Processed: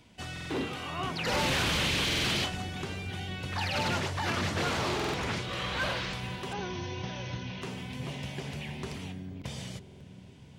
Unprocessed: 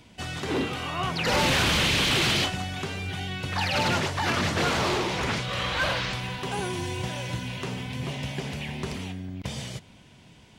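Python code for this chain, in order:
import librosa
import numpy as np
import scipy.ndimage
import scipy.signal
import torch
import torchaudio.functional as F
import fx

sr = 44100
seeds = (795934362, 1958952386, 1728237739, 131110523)

y = fx.cheby1_lowpass(x, sr, hz=6300.0, order=8, at=(6.53, 7.62))
y = fx.echo_wet_lowpass(y, sr, ms=482, feedback_pct=68, hz=420.0, wet_db=-11)
y = fx.buffer_glitch(y, sr, at_s=(0.32, 2.06, 4.95, 9.82), block=2048, repeats=3)
y = F.gain(torch.from_numpy(y), -5.5).numpy()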